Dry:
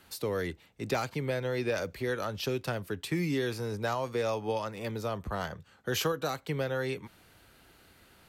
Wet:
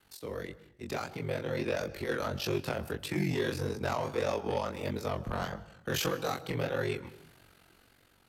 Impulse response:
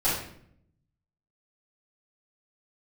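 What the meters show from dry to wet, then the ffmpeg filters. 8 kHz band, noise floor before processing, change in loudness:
-1.0 dB, -61 dBFS, -1.0 dB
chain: -filter_complex "[0:a]aeval=exprs='val(0)*sin(2*PI*23*n/s)':c=same,dynaudnorm=f=560:g=5:m=2.51,asplit=2[s0][s1];[1:a]atrim=start_sample=2205,adelay=118[s2];[s1][s2]afir=irnorm=-1:irlink=0,volume=0.0282[s3];[s0][s3]amix=inputs=2:normalize=0,aeval=exprs='0.299*(cos(1*acos(clip(val(0)/0.299,-1,1)))-cos(1*PI/2))+0.0473*(cos(5*acos(clip(val(0)/0.299,-1,1)))-cos(5*PI/2))':c=same,flanger=delay=19:depth=7.6:speed=1.6,volume=0.501"

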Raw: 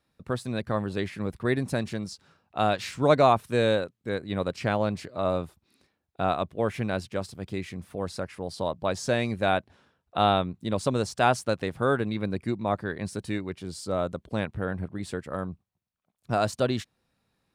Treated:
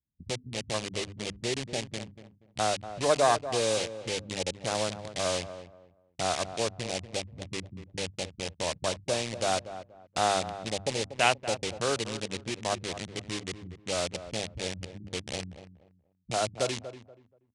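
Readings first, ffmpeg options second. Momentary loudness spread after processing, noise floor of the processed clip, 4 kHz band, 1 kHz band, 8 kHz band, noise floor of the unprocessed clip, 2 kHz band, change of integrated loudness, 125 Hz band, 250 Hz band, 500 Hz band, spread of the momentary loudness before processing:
12 LU, -68 dBFS, +4.5 dB, -4.0 dB, +9.0 dB, -79 dBFS, -1.5 dB, -3.0 dB, -8.0 dB, -9.0 dB, -4.0 dB, 12 LU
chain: -filter_complex "[0:a]aemphasis=mode=reproduction:type=bsi,bandreject=f=50:t=h:w=6,bandreject=f=100:t=h:w=6,bandreject=f=150:t=h:w=6,bandreject=f=200:t=h:w=6,bandreject=f=250:t=h:w=6,bandreject=f=300:t=h:w=6,afwtdn=0.0447,highpass=45,highshelf=f=3700:g=10.5,acrossover=split=380[s0][s1];[s0]acompressor=threshold=0.0141:ratio=5[s2];[s1]acrusher=bits=5:mix=0:aa=0.000001[s3];[s2][s3]amix=inputs=2:normalize=0,adynamicsmooth=sensitivity=2.5:basefreq=6200,aexciter=amount=4.3:drive=6.7:freq=2000,asplit=2[s4][s5];[s5]adelay=239,lowpass=f=1200:p=1,volume=0.282,asplit=2[s6][s7];[s7]adelay=239,lowpass=f=1200:p=1,volume=0.27,asplit=2[s8][s9];[s9]adelay=239,lowpass=f=1200:p=1,volume=0.27[s10];[s6][s8][s10]amix=inputs=3:normalize=0[s11];[s4][s11]amix=inputs=2:normalize=0,aresample=22050,aresample=44100,volume=0.631"

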